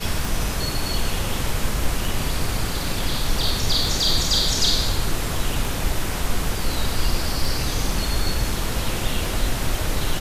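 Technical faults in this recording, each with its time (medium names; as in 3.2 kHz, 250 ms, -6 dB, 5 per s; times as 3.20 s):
tick 33 1/3 rpm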